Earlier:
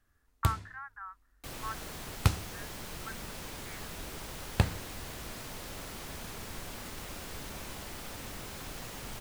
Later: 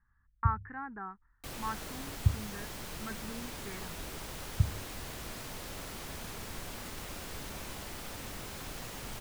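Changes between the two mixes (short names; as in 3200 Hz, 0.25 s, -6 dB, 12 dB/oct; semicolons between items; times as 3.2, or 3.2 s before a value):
speech: remove inverse Chebyshev band-stop 190–470 Hz, stop band 60 dB; first sound: add inverse Chebyshev low-pass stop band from 510 Hz, stop band 60 dB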